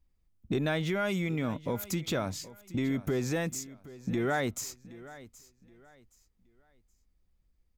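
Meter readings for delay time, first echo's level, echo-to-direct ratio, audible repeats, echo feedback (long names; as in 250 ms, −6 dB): 772 ms, −18.0 dB, −17.5 dB, 2, 29%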